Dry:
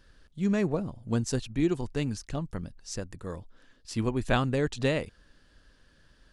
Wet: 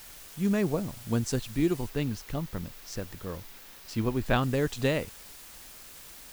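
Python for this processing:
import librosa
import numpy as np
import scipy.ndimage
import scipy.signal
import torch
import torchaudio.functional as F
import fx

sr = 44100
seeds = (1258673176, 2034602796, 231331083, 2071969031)

y = fx.quant_dither(x, sr, seeds[0], bits=8, dither='triangular')
y = fx.peak_eq(y, sr, hz=8400.0, db=-6.0, octaves=1.1, at=(1.89, 4.43))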